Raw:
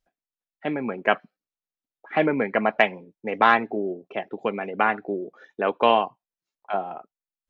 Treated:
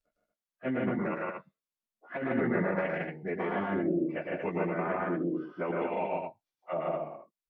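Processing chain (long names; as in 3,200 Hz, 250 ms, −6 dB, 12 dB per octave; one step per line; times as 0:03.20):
phase-vocoder pitch shift without resampling −2.5 semitones
compressor whose output falls as the input rises −26 dBFS, ratio −1
loudspeakers that aren't time-aligned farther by 38 metres −3 dB, 52 metres −1 dB, 79 metres −5 dB
level −6.5 dB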